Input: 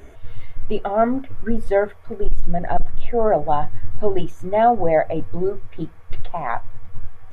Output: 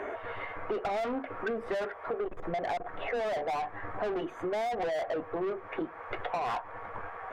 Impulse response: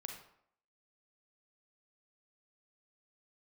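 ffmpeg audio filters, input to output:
-filter_complex "[0:a]acrossover=split=320 2100:gain=0.178 1 0.1[link_01][link_02][link_03];[link_01][link_02][link_03]amix=inputs=3:normalize=0,asplit=2[link_04][link_05];[link_05]highpass=frequency=720:poles=1,volume=32dB,asoftclip=type=tanh:threshold=-5.5dB[link_06];[link_04][link_06]amix=inputs=2:normalize=0,lowpass=frequency=2200:poles=1,volume=-6dB,acompressor=threshold=-24dB:ratio=6,volume=-7.5dB"

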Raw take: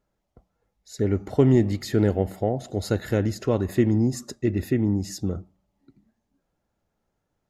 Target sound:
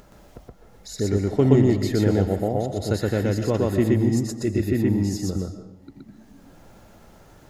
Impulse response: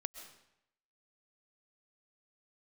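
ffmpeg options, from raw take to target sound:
-filter_complex "[0:a]acompressor=mode=upward:threshold=-30dB:ratio=2.5,asplit=2[link_01][link_02];[1:a]atrim=start_sample=2205,adelay=122[link_03];[link_02][link_03]afir=irnorm=-1:irlink=0,volume=2dB[link_04];[link_01][link_04]amix=inputs=2:normalize=0,volume=-1dB"

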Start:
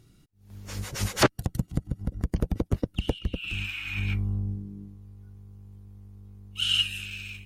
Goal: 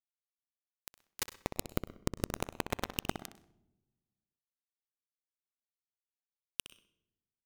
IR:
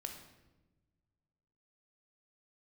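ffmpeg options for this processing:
-filter_complex "[0:a]bandreject=frequency=50:width_type=h:width=6,bandreject=frequency=100:width_type=h:width=6,bandreject=frequency=150:width_type=h:width=6,bandreject=frequency=200:width_type=h:width=6,bandreject=frequency=250:width_type=h:width=6,bandreject=frequency=300:width_type=h:width=6,asplit=2[link_01][link_02];[link_02]asoftclip=type=hard:threshold=-24.5dB,volume=-5dB[link_03];[link_01][link_03]amix=inputs=2:normalize=0,acompressor=threshold=-39dB:ratio=6,acrusher=bits=4:mix=0:aa=0.000001,asplit=2[link_04][link_05];[link_05]adelay=63,lowpass=frequency=3700:poles=1,volume=-9dB,asplit=2[link_06][link_07];[link_07]adelay=63,lowpass=frequency=3700:poles=1,volume=0.37,asplit=2[link_08][link_09];[link_09]adelay=63,lowpass=frequency=3700:poles=1,volume=0.37,asplit=2[link_10][link_11];[link_11]adelay=63,lowpass=frequency=3700:poles=1,volume=0.37[link_12];[link_04][link_06][link_08][link_10][link_12]amix=inputs=5:normalize=0,asplit=2[link_13][link_14];[1:a]atrim=start_sample=2205,asetrate=57330,aresample=44100,adelay=100[link_15];[link_14][link_15]afir=irnorm=-1:irlink=0,volume=-15.5dB[link_16];[link_13][link_16]amix=inputs=2:normalize=0,volume=7dB"

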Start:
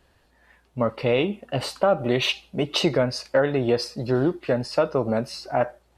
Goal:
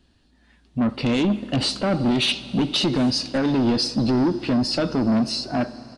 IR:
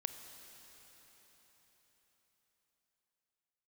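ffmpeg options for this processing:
-filter_complex "[0:a]equalizer=frequency=125:width_type=o:width=1:gain=-4,equalizer=frequency=250:width_type=o:width=1:gain=9,equalizer=frequency=500:width_type=o:width=1:gain=-11,equalizer=frequency=1000:width_type=o:width=1:gain=-7,equalizer=frequency=2000:width_type=o:width=1:gain=-7,equalizer=frequency=4000:width_type=o:width=1:gain=4,equalizer=frequency=8000:width_type=o:width=1:gain=-4,dynaudnorm=framelen=270:gausssize=7:maxgain=11.5dB,alimiter=limit=-8.5dB:level=0:latency=1:release=127,asoftclip=type=tanh:threshold=-19dB,asettb=1/sr,asplit=3[link_01][link_02][link_03];[link_01]atrim=end=2.934[link_04];[link_02]atrim=start=2.93:end=3.38,asetpts=PTS-STARTPTS,afade=type=in:duration=0.004:curve=qsin,afade=type=out:start_time=0.446:duration=0.004:curve=qsin,acrusher=bits=6:mode=log:mix=0:aa=0.000001[link_05];[link_03]atrim=start=3.376[link_06];[link_04][link_05]acrossfade=duration=0.004:curve1=hsin:curve2=qsin[link_07];[link_07][link_06]acrossfade=duration=0.004:curve1=qsin:curve2=hsin,aresample=22050,aresample=44100,asplit=2[link_08][link_09];[1:a]atrim=start_sample=2205,highshelf=frequency=9200:gain=-9.5[link_10];[link_09][link_10]afir=irnorm=-1:irlink=0,volume=-2.5dB[link_11];[link_08][link_11]amix=inputs=2:normalize=0,volume=-1.5dB"

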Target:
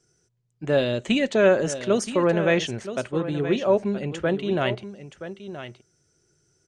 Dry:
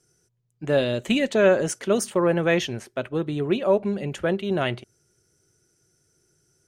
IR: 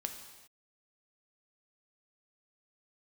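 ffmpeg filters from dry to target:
-filter_complex "[0:a]lowpass=frequency=8100:width=0.5412,lowpass=frequency=8100:width=1.3066,asplit=2[link_01][link_02];[link_02]aecho=0:1:974:0.251[link_03];[link_01][link_03]amix=inputs=2:normalize=0"

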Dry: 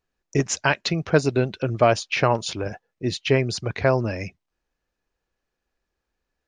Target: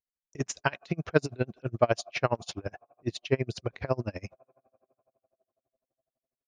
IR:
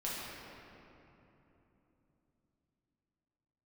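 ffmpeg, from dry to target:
-filter_complex "[0:a]agate=range=-17dB:threshold=-41dB:ratio=16:detection=peak,asplit=2[link_01][link_02];[link_02]asplit=3[link_03][link_04][link_05];[link_03]bandpass=frequency=730:width_type=q:width=8,volume=0dB[link_06];[link_04]bandpass=frequency=1090:width_type=q:width=8,volume=-6dB[link_07];[link_05]bandpass=frequency=2440:width_type=q:width=8,volume=-9dB[link_08];[link_06][link_07][link_08]amix=inputs=3:normalize=0[link_09];[1:a]atrim=start_sample=2205,lowpass=frequency=1800:width=0.5412,lowpass=frequency=1800:width=1.3066[link_10];[link_09][link_10]afir=irnorm=-1:irlink=0,volume=-18.5dB[link_11];[link_01][link_11]amix=inputs=2:normalize=0,aeval=exprs='val(0)*pow(10,-31*(0.5-0.5*cos(2*PI*12*n/s))/20)':channel_layout=same,volume=-2.5dB"

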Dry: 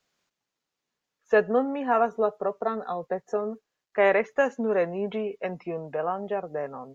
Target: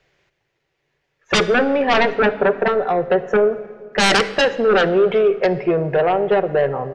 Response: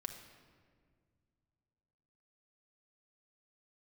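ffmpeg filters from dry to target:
-filter_complex "[0:a]firequalizer=gain_entry='entry(140,0);entry(210,-19);entry(350,-3);entry(1200,-13);entry(1900,-3);entry(3900,-14);entry(8900,-24)':delay=0.05:min_phase=1,aeval=exprs='0.335*sin(PI/2*8.91*val(0)/0.335)':channel_layout=same,asplit=2[link_01][link_02];[1:a]atrim=start_sample=2205,asetrate=41895,aresample=44100[link_03];[link_02][link_03]afir=irnorm=-1:irlink=0,volume=-0.5dB[link_04];[link_01][link_04]amix=inputs=2:normalize=0,volume=-6dB"

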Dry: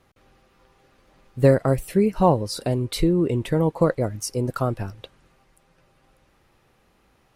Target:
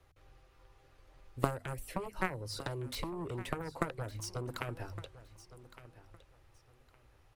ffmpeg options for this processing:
ffmpeg -i in.wav -filter_complex "[0:a]bandreject=frequency=50:width_type=h:width=6,bandreject=frequency=100:width_type=h:width=6,bandreject=frequency=150:width_type=h:width=6,bandreject=frequency=200:width_type=h:width=6,bandreject=frequency=250:width_type=h:width=6,acrossover=split=190|7000[link_01][link_02][link_03];[link_01]acompressor=threshold=-37dB:ratio=4[link_04];[link_02]acompressor=threshold=-27dB:ratio=4[link_05];[link_03]acompressor=threshold=-44dB:ratio=4[link_06];[link_04][link_05][link_06]amix=inputs=3:normalize=0,acrossover=split=150[link_07][link_08];[link_07]alimiter=level_in=14dB:limit=-24dB:level=0:latency=1:release=287,volume=-14dB[link_09];[link_08]aeval=exprs='0.2*(cos(1*acos(clip(val(0)/0.2,-1,1)))-cos(1*PI/2))+0.0891*(cos(3*acos(clip(val(0)/0.2,-1,1)))-cos(3*PI/2))':channel_layout=same[link_10];[link_09][link_10]amix=inputs=2:normalize=0,aecho=1:1:1162|2324:0.158|0.0365,volume=2.5dB" out.wav

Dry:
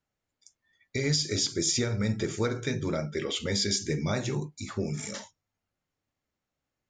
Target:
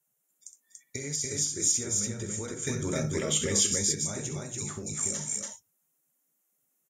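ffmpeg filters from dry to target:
ffmpeg -i in.wav -filter_complex "[0:a]acompressor=threshold=-33dB:ratio=4,aexciter=amount=6.2:drive=9.4:freq=6900,asettb=1/sr,asplit=3[link_01][link_02][link_03];[link_01]atrim=end=2.674[link_04];[link_02]atrim=start=2.67:end=3.66,asetpts=PTS-STARTPTS,afade=type=in:duration=0.004:curve=qsin,afade=type=out:start_time=0.986:duration=0.004:curve=qsin,acontrast=74[link_05];[link_03]atrim=start=3.656[link_06];[link_04][link_05]acrossfade=duration=0.004:curve1=hsin:curve2=qsin[link_07];[link_07][link_06]acrossfade=duration=0.004:curve1=qsin:curve2=hsin,aecho=1:1:64.14|285.7:0.316|0.794,volume=-3dB" -ar 48000 -c:a libvorbis -b:a 48k out.ogg

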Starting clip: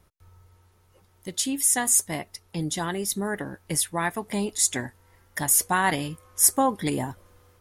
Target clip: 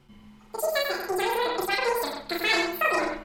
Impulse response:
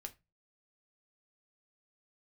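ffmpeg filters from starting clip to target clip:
-filter_complex "[0:a]equalizer=frequency=8900:width_type=o:width=2.7:gain=-8,asplit=2[link_01][link_02];[link_02]acompressor=threshold=-35dB:ratio=6,volume=-1dB[link_03];[link_01][link_03]amix=inputs=2:normalize=0,flanger=delay=18:depth=2.8:speed=1.9,asplit=2[link_04][link_05];[link_05]adelay=220,lowpass=frequency=1900:poles=1,volume=-3.5dB,asplit=2[link_06][link_07];[link_07]adelay=220,lowpass=frequency=1900:poles=1,volume=0.27,asplit=2[link_08][link_09];[link_09]adelay=220,lowpass=frequency=1900:poles=1,volume=0.27,asplit=2[link_10][link_11];[link_11]adelay=220,lowpass=frequency=1900:poles=1,volume=0.27[link_12];[link_04][link_06][link_08][link_10][link_12]amix=inputs=5:normalize=0,asplit=2[link_13][link_14];[1:a]atrim=start_sample=2205,adelay=83[link_15];[link_14][link_15]afir=irnorm=-1:irlink=0,volume=3.5dB[link_16];[link_13][link_16]amix=inputs=2:normalize=0,asetrate=103194,aresample=44100,aresample=32000,aresample=44100"

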